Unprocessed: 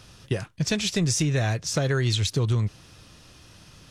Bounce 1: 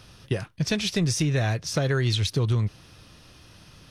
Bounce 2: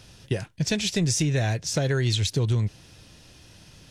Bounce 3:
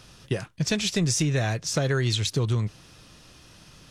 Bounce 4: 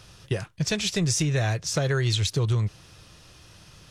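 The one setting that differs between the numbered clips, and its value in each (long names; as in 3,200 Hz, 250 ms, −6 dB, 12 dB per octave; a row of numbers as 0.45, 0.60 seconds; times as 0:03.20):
parametric band, centre frequency: 7,300, 1,200, 89, 250 Hertz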